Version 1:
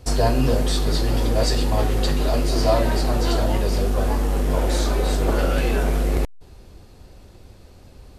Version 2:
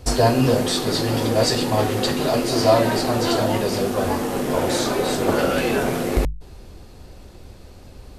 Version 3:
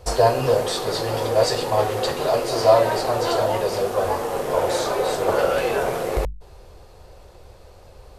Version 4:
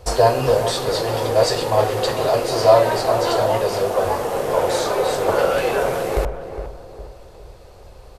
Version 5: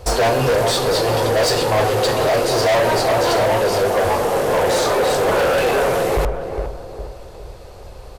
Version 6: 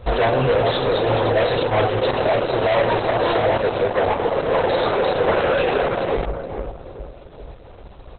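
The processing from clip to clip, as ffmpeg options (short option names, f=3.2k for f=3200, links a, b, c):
-af "bandreject=f=50:t=h:w=6,bandreject=f=100:t=h:w=6,bandreject=f=150:t=h:w=6,volume=4dB"
-af "equalizer=f=250:t=o:w=1:g=-12,equalizer=f=500:t=o:w=1:g=8,equalizer=f=1k:t=o:w=1:g=5,volume=-4dB"
-filter_complex "[0:a]asplit=2[a][b];[b]adelay=410,lowpass=f=1.3k:p=1,volume=-9dB,asplit=2[c][d];[d]adelay=410,lowpass=f=1.3k:p=1,volume=0.43,asplit=2[e][f];[f]adelay=410,lowpass=f=1.3k:p=1,volume=0.43,asplit=2[g][h];[h]adelay=410,lowpass=f=1.3k:p=1,volume=0.43,asplit=2[i][j];[j]adelay=410,lowpass=f=1.3k:p=1,volume=0.43[k];[a][c][e][g][i][k]amix=inputs=6:normalize=0,volume=2dB"
-af "volume=19dB,asoftclip=hard,volume=-19dB,volume=5.5dB"
-ar 48000 -c:a libopus -b:a 8k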